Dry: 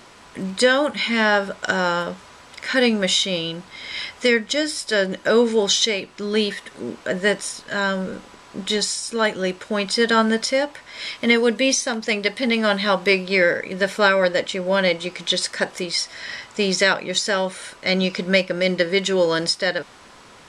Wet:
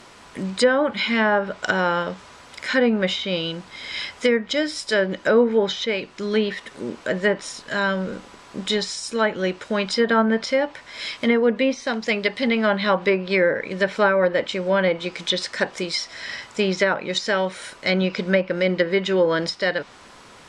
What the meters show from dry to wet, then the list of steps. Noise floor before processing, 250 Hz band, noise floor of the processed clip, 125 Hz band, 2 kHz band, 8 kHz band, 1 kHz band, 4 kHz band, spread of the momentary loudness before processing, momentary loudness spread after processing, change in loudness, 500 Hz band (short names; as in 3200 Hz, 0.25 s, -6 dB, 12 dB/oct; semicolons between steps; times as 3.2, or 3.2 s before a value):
-46 dBFS, 0.0 dB, -46 dBFS, 0.0 dB, -2.0 dB, -9.5 dB, -0.5 dB, -4.5 dB, 12 LU, 11 LU, -1.5 dB, 0.0 dB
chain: treble ducked by the level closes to 1400 Hz, closed at -13 dBFS